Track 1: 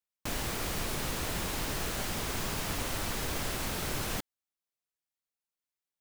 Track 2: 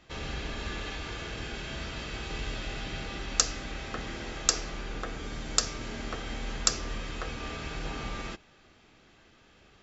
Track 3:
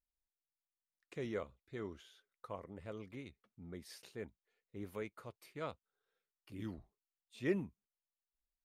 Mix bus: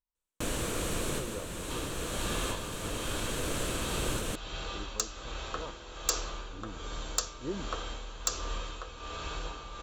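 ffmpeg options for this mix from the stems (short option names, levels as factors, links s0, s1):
-filter_complex "[0:a]lowpass=11000,adelay=150,volume=1.19[s0];[1:a]equalizer=f=125:t=o:w=1:g=-6,equalizer=f=250:t=o:w=1:g=-10,equalizer=f=500:t=o:w=1:g=-3,equalizer=f=1000:t=o:w=1:g=8,equalizer=f=2000:t=o:w=1:g=-6,equalizer=f=4000:t=o:w=1:g=5,tremolo=f=1.3:d=0.62,adelay=1600,volume=1.12[s1];[2:a]lowpass=f=940:t=q:w=5.7,equalizer=f=640:w=0.52:g=-8,volume=1,asplit=2[s2][s3];[s3]apad=whole_len=271478[s4];[s0][s4]sidechaincompress=threshold=0.00501:ratio=10:attack=49:release=1340[s5];[s5][s1][s2]amix=inputs=3:normalize=0,equalizer=f=315:t=o:w=0.33:g=4,equalizer=f=500:t=o:w=0.33:g=6,equalizer=f=800:t=o:w=0.33:g=-7,equalizer=f=2000:t=o:w=0.33:g=-6,equalizer=f=5000:t=o:w=0.33:g=-8,equalizer=f=8000:t=o:w=0.33:g=5,asoftclip=type=hard:threshold=0.119"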